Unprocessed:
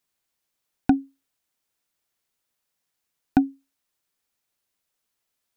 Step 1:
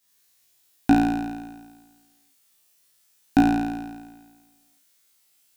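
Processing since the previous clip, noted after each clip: high shelf 2500 Hz +11 dB; on a send: flutter echo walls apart 3 m, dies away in 1.4 s; on the sum: gain -1.5 dB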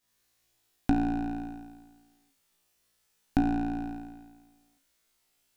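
bell 140 Hz -4.5 dB 2.1 oct; compressor 2:1, threshold -32 dBFS, peak gain reduction 10 dB; tilt -2.5 dB/oct; gain -1.5 dB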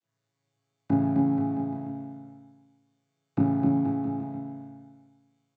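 chord vocoder major triad, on A2; doubler 29 ms -3 dB; bouncing-ball echo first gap 0.26 s, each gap 0.85×, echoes 5

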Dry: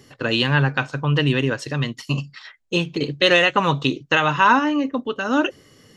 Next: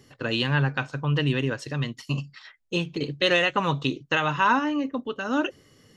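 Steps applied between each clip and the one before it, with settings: low shelf 140 Hz +3.5 dB; gain -6 dB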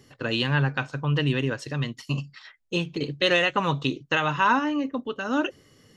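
nothing audible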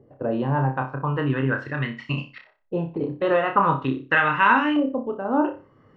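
LFO low-pass saw up 0.42 Hz 580–2700 Hz; flutter echo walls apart 5.2 m, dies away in 0.31 s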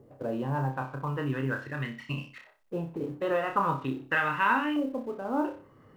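G.711 law mismatch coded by mu; gain -8 dB

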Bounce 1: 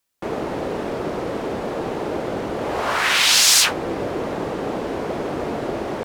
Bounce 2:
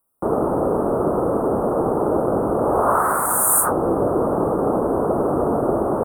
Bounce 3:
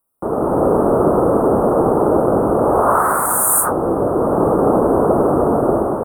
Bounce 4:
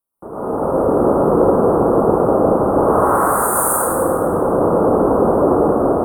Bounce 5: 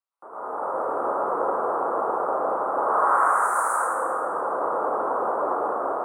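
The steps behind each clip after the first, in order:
Chebyshev band-stop 1300–9000 Hz, order 4; gain +6.5 dB
AGC; gain -1 dB
plate-style reverb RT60 3.2 s, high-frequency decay 0.45×, pre-delay 95 ms, DRR -10 dB; gain -11 dB
octaver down 2 oct, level -2 dB; HPF 1100 Hz 12 dB/oct; air absorption 120 m; gain +1 dB

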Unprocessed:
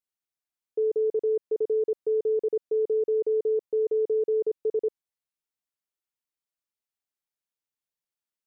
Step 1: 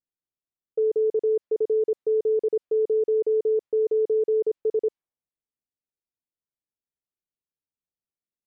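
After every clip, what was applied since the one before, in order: low-pass opened by the level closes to 440 Hz, open at -22 dBFS; gain +2.5 dB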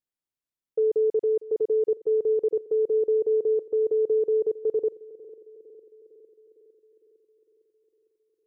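narrowing echo 0.455 s, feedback 67%, band-pass 330 Hz, level -17.5 dB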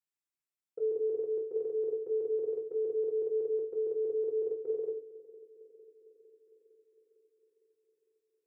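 reverb RT60 0.40 s, pre-delay 3 ms, DRR 4 dB; gain -5.5 dB

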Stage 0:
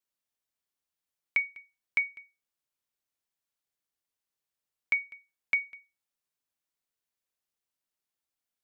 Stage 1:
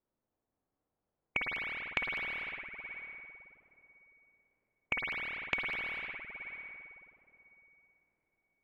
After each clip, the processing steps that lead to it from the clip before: spring tank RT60 3.9 s, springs 51/55 ms, chirp 35 ms, DRR 1.5 dB; low-pass opened by the level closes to 660 Hz, open at -31 dBFS; spectral compressor 2:1; gain +1.5 dB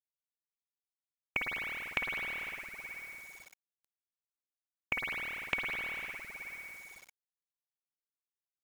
bit-crush 9-bit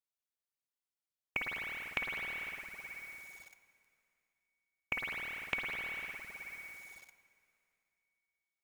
plate-style reverb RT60 2.8 s, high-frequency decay 0.95×, DRR 13.5 dB; gain -2.5 dB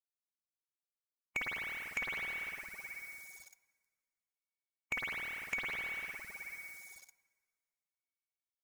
per-bin expansion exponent 1.5; in parallel at -2 dB: compressor, threshold -49 dBFS, peak gain reduction 17 dB; on the sum: soft clip -31 dBFS, distortion -11 dB; gain +2.5 dB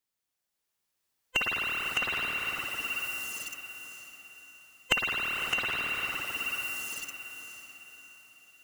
band-swap scrambler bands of 500 Hz; recorder AGC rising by 6.6 dB/s; diffused feedback echo 0.568 s, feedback 41%, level -9.5 dB; gain +8.5 dB

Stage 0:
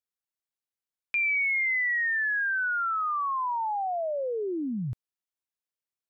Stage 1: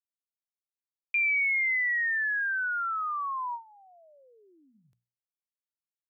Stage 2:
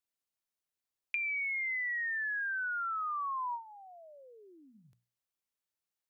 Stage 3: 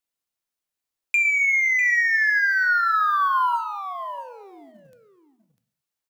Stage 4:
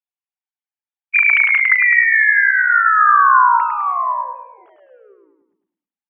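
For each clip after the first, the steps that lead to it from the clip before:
gate with hold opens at -24 dBFS; tilt +3.5 dB/oct; notches 60/120/180/240 Hz; gain -4 dB
compressor, threshold -38 dBFS, peak gain reduction 12.5 dB; gain +3.5 dB
sample leveller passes 2; echo 0.649 s -11.5 dB; non-linear reverb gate 0.31 s falling, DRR 11.5 dB; gain +7.5 dB
sine-wave speech; feedback echo 0.104 s, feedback 44%, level -5 dB; gain +6.5 dB

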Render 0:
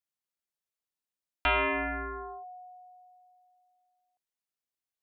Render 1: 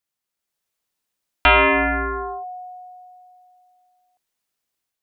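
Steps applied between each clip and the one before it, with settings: AGC gain up to 5.5 dB; gain +7 dB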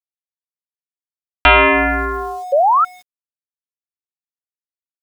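painted sound rise, 2.52–2.85, 530–1400 Hz -16 dBFS; sample gate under -41 dBFS; gain +4 dB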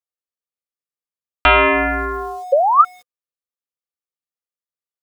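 small resonant body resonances 500/1200 Hz, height 11 dB, ringing for 45 ms; gain -3 dB

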